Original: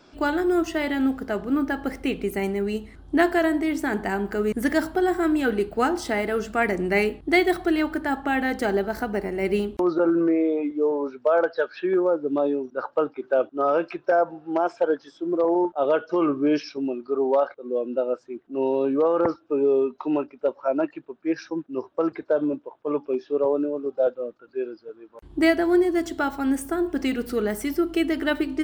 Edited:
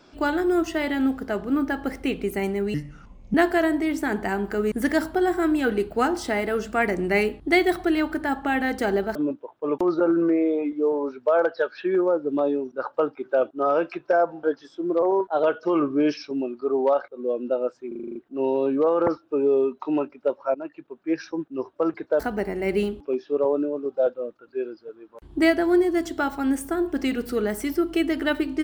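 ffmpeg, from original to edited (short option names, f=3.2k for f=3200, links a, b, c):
-filter_complex "[0:a]asplit=18[a][b][c][d][e][f][g][h][i][j][k][l][m][n][o][p][q][r];[a]atrim=end=2.744[s];[b]atrim=start=2.74:end=3.15,asetpts=PTS-STARTPTS,asetrate=29988,aresample=44100[t];[c]atrim=start=3.146:end=8.962[u];[d]atrim=start=22.378:end=23.012[v];[e]atrim=start=9.768:end=14.422[w];[f]atrim=start=14.858:end=15.454[x];[g]atrim=start=15.45:end=15.9,asetpts=PTS-STARTPTS,asetrate=48069,aresample=44100,atrim=end_sample=18206,asetpts=PTS-STARTPTS[y];[h]atrim=start=15.896:end=18.382[z];[i]atrim=start=18.338:end=18.382[aa];[j]atrim=start=18.338:end=18.382[ab];[k]atrim=start=18.338:end=18.382[ac];[l]atrim=start=18.338:end=18.382[ad];[m]atrim=start=18.338:end=18.382[ae];[n]atrim=start=18.338:end=18.382[af];[o]atrim=start=18.338:end=20.73,asetpts=PTS-STARTPTS,afade=t=out:st=2.388:d=0.004:c=hsin:silence=0.141254[ag];[p]atrim=start=20.73:end=22.382,asetpts=PTS-STARTPTS,afade=t=in:d=0.47:silence=0.141254[ah];[q]atrim=start=8.958:end=9.772[ai];[r]atrim=start=23.008[aj];[s][t]acrossfade=d=0.004:c1=hsin:c2=hsin[ak];[ak][u]acrossfade=d=0.004:c1=hsin:c2=hsin[al];[al][v]acrossfade=d=0.004:c1=hsin:c2=hsin[am];[am][w]acrossfade=d=0.004:c1=hsin:c2=hsin[an];[an][x]acrossfade=d=0.004:c1=hsin:c2=hsin[ao];[ao][y]acrossfade=d=0.004:c1=hsin:c2=hsin[ap];[ap][z]acrossfade=d=0.004:c1=hsin:c2=hsin[aq];[aq][aa]acrossfade=d=0.004:c1=hsin:c2=hsin[ar];[ar][ab]acrossfade=d=0.004:c1=hsin:c2=hsin[as];[as][ac]acrossfade=d=0.004:c1=hsin:c2=hsin[at];[at][ad]acrossfade=d=0.004:c1=hsin:c2=hsin[au];[au][ae]acrossfade=d=0.004:c1=hsin:c2=hsin[av];[av][af]acrossfade=d=0.004:c1=hsin:c2=hsin[aw];[ag][ah]concat=n=2:v=0:a=1[ax];[aw][ax]acrossfade=d=0.004:c1=hsin:c2=hsin[ay];[ay][ai]acrossfade=d=0.004:c1=hsin:c2=hsin[az];[az][aj]acrossfade=d=0.004:c1=hsin:c2=hsin"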